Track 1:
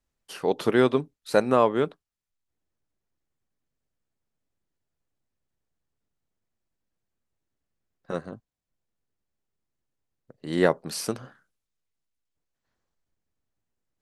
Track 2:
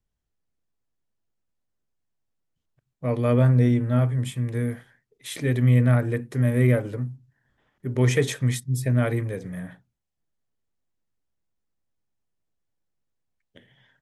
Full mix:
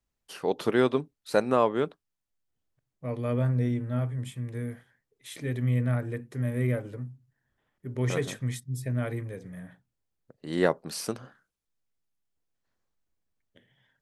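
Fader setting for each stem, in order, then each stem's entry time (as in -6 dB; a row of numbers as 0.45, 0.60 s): -3.0, -8.0 dB; 0.00, 0.00 s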